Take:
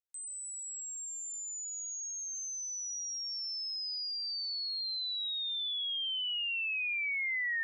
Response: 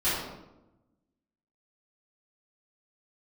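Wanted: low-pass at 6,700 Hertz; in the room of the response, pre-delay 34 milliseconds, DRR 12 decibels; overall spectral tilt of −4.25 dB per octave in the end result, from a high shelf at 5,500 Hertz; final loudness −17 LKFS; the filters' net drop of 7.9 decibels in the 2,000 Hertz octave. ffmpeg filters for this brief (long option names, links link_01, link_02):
-filter_complex "[0:a]lowpass=6700,equalizer=frequency=2000:width_type=o:gain=-8,highshelf=frequency=5500:gain=-9,asplit=2[link_01][link_02];[1:a]atrim=start_sample=2205,adelay=34[link_03];[link_02][link_03]afir=irnorm=-1:irlink=0,volume=-24dB[link_04];[link_01][link_04]amix=inputs=2:normalize=0,volume=23dB"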